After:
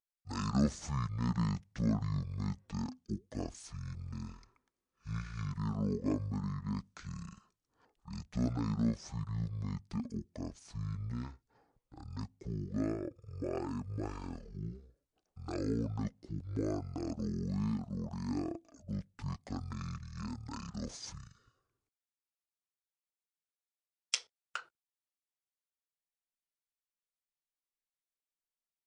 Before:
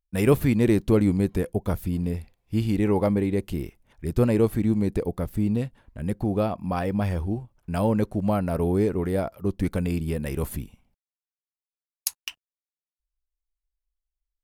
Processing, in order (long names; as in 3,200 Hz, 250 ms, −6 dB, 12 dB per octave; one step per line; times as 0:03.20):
high-pass filter 440 Hz 6 dB per octave
wrong playback speed 15 ips tape played at 7.5 ips
level −8 dB